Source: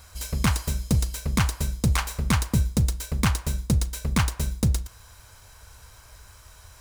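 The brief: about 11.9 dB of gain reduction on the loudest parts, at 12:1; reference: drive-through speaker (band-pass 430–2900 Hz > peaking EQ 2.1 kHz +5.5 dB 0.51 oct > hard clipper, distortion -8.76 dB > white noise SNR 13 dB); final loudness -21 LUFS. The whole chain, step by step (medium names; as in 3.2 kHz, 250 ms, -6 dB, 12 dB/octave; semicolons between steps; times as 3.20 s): compression 12:1, threshold -29 dBFS; band-pass 430–2900 Hz; peaking EQ 2.1 kHz +5.5 dB 0.51 oct; hard clipper -34 dBFS; white noise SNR 13 dB; trim +25.5 dB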